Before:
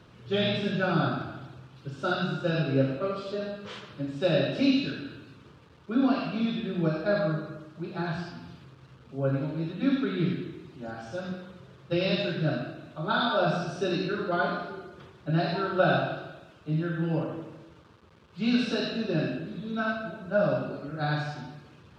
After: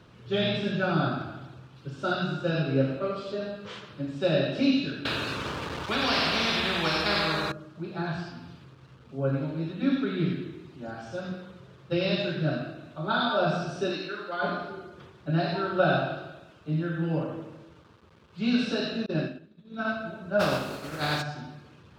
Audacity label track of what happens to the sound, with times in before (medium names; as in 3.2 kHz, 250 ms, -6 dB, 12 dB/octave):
5.050000	7.520000	spectrum-flattening compressor 4:1
13.910000	14.410000	high-pass 510 Hz -> 1.3 kHz 6 dB/octave
19.060000	19.850000	expander -26 dBFS
20.390000	21.210000	spectral contrast reduction exponent 0.54